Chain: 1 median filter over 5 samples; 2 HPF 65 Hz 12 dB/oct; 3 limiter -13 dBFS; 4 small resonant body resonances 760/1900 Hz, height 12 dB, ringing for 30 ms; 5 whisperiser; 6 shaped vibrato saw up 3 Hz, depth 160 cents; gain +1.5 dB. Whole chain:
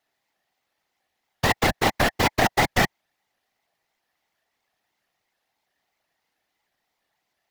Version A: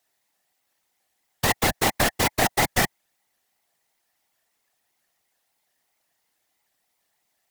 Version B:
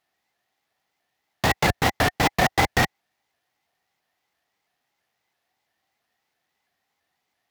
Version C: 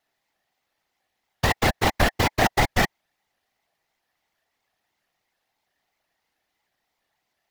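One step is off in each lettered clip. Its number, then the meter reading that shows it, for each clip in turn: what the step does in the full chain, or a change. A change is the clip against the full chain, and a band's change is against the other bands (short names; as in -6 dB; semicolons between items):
1, 8 kHz band +7.5 dB; 5, 125 Hz band +1.5 dB; 2, 125 Hz band +2.5 dB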